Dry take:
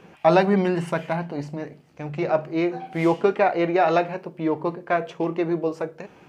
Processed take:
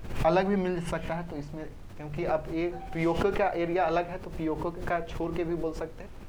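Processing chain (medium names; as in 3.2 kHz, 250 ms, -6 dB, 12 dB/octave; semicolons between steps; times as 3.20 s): added noise brown -36 dBFS; swell ahead of each attack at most 80 dB/s; trim -7.5 dB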